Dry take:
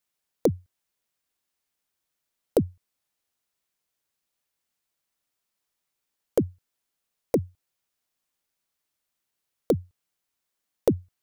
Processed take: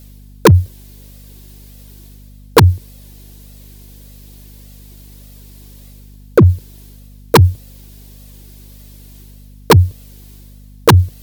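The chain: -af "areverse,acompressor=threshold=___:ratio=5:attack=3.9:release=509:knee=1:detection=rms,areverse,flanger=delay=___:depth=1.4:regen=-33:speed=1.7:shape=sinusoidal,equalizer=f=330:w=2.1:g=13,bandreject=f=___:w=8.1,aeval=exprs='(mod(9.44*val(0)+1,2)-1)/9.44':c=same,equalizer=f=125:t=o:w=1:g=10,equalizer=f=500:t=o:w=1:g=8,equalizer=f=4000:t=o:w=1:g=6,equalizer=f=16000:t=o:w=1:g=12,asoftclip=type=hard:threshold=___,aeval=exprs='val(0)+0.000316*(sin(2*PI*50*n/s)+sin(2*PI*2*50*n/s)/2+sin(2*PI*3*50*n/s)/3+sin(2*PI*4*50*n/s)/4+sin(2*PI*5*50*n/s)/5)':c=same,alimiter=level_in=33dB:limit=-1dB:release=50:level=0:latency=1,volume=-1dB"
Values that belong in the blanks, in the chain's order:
-29dB, 1.5, 1300, -21dB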